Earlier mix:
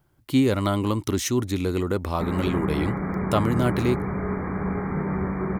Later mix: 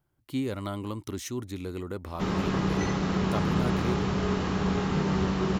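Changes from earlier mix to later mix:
speech -10.5 dB; background: remove brick-wall FIR low-pass 2.4 kHz

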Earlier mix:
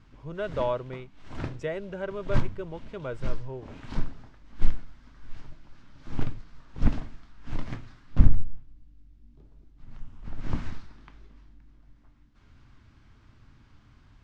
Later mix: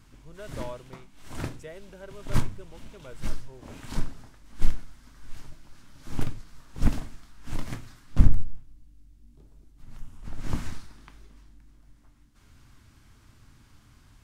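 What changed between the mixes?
speech -11.5 dB; master: remove distance through air 160 m

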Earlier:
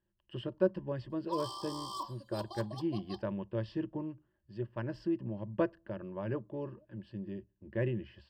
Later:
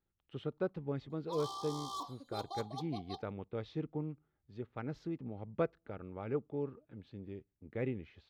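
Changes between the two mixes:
speech: send -9.0 dB; master: remove rippled EQ curve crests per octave 1.3, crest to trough 15 dB

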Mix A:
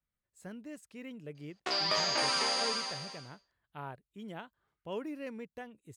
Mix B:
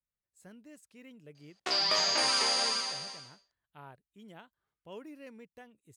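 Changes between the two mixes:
speech -7.5 dB; master: add treble shelf 3.8 kHz +6 dB

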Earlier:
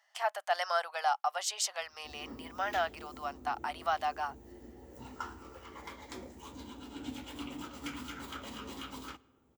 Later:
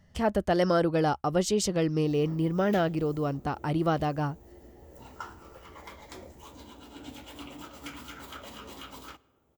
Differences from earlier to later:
speech: remove elliptic high-pass 720 Hz, stop band 60 dB; background: add graphic EQ with 31 bands 250 Hz -6 dB, 630 Hz +6 dB, 16 kHz +11 dB

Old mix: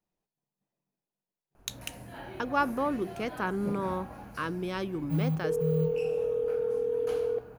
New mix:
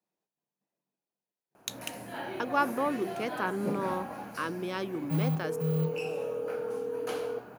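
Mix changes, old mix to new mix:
first sound +6.0 dB; second sound -5.0 dB; master: add high-pass 210 Hz 12 dB/octave

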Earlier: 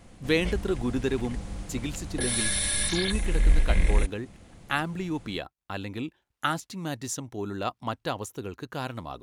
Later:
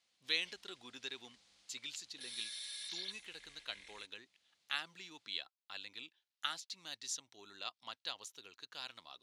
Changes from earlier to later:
background -11.0 dB; master: add band-pass filter 4.2 kHz, Q 1.9

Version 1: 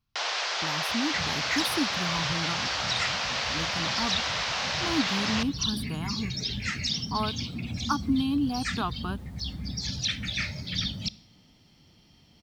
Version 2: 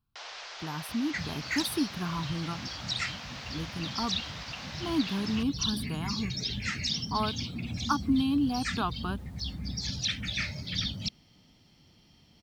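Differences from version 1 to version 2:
first sound -11.5 dB; reverb: off

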